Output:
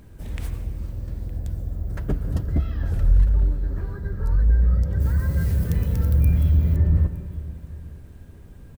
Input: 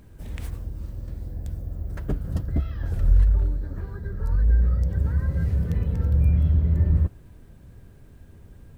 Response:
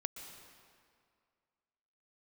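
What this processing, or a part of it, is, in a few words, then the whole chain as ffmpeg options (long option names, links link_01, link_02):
saturated reverb return: -filter_complex "[0:a]asplit=2[link_01][link_02];[1:a]atrim=start_sample=2205[link_03];[link_02][link_03]afir=irnorm=-1:irlink=0,asoftclip=type=tanh:threshold=-16dB,volume=3dB[link_04];[link_01][link_04]amix=inputs=2:normalize=0,asplit=3[link_05][link_06][link_07];[link_05]afade=type=out:start_time=5:duration=0.02[link_08];[link_06]aemphasis=mode=production:type=75kf,afade=type=in:start_time=5:duration=0.02,afade=type=out:start_time=6.75:duration=0.02[link_09];[link_07]afade=type=in:start_time=6.75:duration=0.02[link_10];[link_08][link_09][link_10]amix=inputs=3:normalize=0,aecho=1:1:913:0.0841,volume=-4dB"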